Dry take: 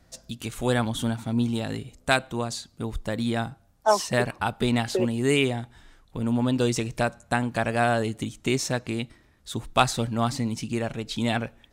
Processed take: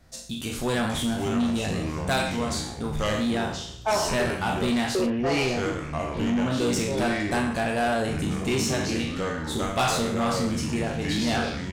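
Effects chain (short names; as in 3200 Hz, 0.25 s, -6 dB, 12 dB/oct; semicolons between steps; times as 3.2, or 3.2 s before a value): spectral trails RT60 0.57 s; 5.06–6.51 steep low-pass 2900 Hz; echoes that change speed 0.37 s, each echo -4 st, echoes 3, each echo -6 dB; on a send: early reflections 13 ms -9.5 dB, 38 ms -9 dB; on the sum: soft clip -19 dBFS, distortion -11 dB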